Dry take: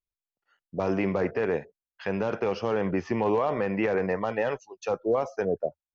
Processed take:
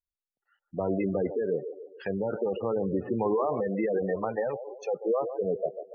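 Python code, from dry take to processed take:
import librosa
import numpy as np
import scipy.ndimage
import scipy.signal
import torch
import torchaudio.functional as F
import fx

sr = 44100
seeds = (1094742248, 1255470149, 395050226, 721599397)

y = fx.dmg_buzz(x, sr, base_hz=120.0, harmonics=33, level_db=-43.0, tilt_db=-3, odd_only=False, at=(2.73, 3.48), fade=0.02)
y = fx.echo_wet_bandpass(y, sr, ms=143, feedback_pct=48, hz=580.0, wet_db=-9.5)
y = fx.spec_gate(y, sr, threshold_db=-15, keep='strong')
y = F.gain(torch.from_numpy(y), -1.5).numpy()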